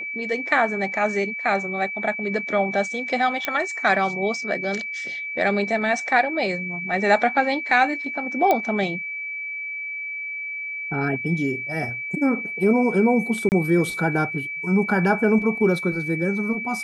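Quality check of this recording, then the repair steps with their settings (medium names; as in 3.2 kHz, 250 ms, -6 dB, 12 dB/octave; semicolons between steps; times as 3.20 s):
whine 2.3 kHz -28 dBFS
3.45 s: pop -8 dBFS
8.51 s: pop -7 dBFS
13.49–13.52 s: dropout 29 ms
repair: de-click; band-stop 2.3 kHz, Q 30; interpolate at 13.49 s, 29 ms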